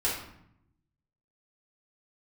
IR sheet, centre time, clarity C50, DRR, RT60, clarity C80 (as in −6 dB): 45 ms, 3.0 dB, −7.0 dB, 0.70 s, 7.0 dB